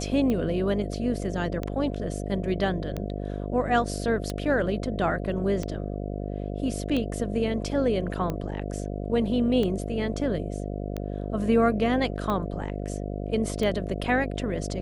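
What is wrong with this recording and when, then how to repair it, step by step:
buzz 50 Hz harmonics 14 -32 dBFS
tick 45 rpm -17 dBFS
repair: de-click; de-hum 50 Hz, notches 14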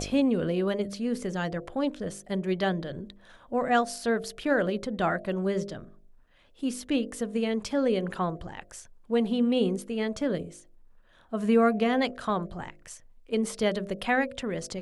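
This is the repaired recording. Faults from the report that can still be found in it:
none

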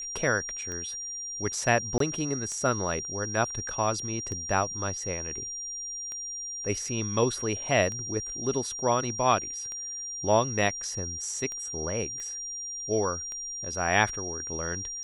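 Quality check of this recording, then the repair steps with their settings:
tick 33 1/3 rpm -24 dBFS
tone 5700 Hz -34 dBFS
1.98–2 gap 23 ms
12.2 pop -26 dBFS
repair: de-click; notch 5700 Hz, Q 30; interpolate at 1.98, 23 ms

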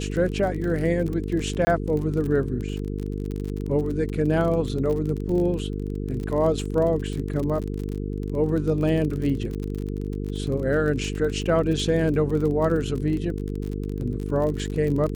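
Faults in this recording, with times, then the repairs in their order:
buzz 50 Hz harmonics 9 -29 dBFS
crackle 38/s -29 dBFS
1.65–1.67 gap 20 ms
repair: de-click; de-hum 50 Hz, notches 9; interpolate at 1.65, 20 ms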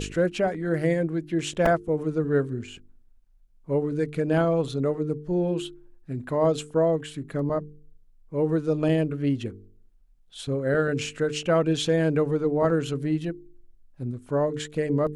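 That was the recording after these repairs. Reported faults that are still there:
none

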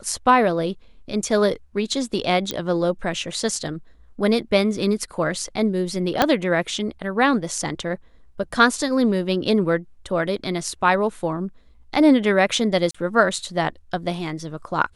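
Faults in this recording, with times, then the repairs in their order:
2.51 pop -9 dBFS
6.22 pop -2 dBFS
12.91–12.95 gap 35 ms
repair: de-click; interpolate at 12.91, 35 ms

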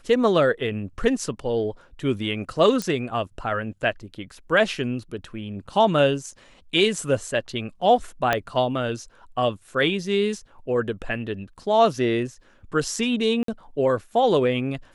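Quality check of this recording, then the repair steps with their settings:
2.82 pop -12 dBFS
8.33 pop -7 dBFS
13.43–13.48 gap 53 ms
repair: de-click; interpolate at 13.43, 53 ms

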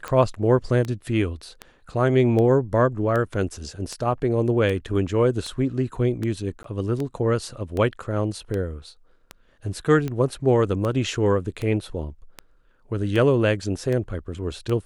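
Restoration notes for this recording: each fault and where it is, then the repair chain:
tick 78 rpm -16 dBFS
6.63–6.64 gap 13 ms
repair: de-click; interpolate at 6.63, 13 ms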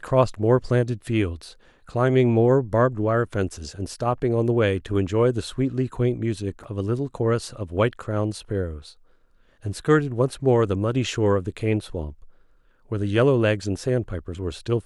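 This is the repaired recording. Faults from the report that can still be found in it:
none

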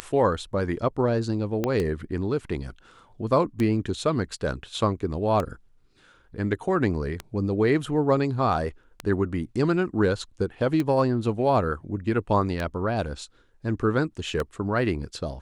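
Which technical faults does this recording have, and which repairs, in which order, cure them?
tick 33 1/3 rpm -14 dBFS
1.64 pop -12 dBFS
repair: de-click

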